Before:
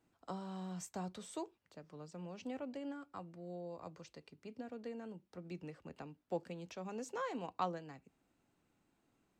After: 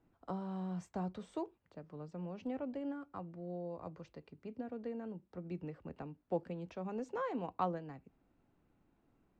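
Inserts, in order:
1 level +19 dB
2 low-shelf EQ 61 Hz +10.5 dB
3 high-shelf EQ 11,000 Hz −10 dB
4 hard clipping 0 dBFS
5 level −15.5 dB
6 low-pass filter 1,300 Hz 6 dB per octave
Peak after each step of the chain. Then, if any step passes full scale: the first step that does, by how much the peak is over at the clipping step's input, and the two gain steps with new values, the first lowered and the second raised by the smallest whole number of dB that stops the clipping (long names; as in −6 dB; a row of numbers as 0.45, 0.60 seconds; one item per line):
−3.5, −3.5, −3.5, −3.5, −19.0, −21.0 dBFS
no step passes full scale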